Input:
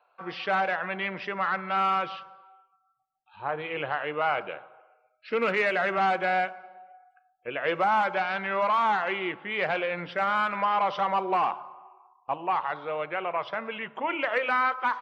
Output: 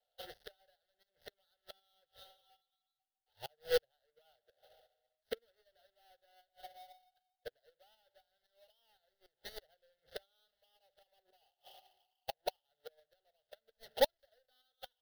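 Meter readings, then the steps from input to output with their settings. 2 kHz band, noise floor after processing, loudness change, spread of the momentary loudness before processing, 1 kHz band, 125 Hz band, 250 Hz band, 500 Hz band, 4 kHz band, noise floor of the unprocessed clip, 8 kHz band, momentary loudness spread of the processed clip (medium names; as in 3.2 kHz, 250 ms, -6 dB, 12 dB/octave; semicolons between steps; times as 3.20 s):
-25.5 dB, under -85 dBFS, -13.5 dB, 11 LU, -26.0 dB, -24.0 dB, -25.5 dB, -12.0 dB, -9.5 dB, -70 dBFS, no reading, 24 LU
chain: dead-time distortion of 0.22 ms; static phaser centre 440 Hz, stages 4; inverted gate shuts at -24 dBFS, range -30 dB; tremolo saw up 3.9 Hz, depth 45%; power-law waveshaper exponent 0.7; static phaser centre 1.6 kHz, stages 8; upward expansion 2.5:1, over -57 dBFS; trim +11.5 dB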